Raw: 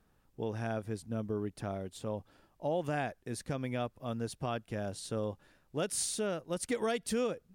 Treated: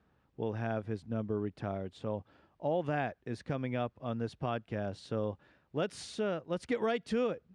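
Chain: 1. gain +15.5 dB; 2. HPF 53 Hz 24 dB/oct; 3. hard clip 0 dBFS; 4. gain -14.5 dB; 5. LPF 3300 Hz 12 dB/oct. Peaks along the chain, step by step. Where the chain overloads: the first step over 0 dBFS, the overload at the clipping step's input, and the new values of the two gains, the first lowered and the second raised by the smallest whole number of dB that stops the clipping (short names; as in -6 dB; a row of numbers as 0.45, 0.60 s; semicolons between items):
-5.0, -5.5, -5.5, -20.0, -20.0 dBFS; no overload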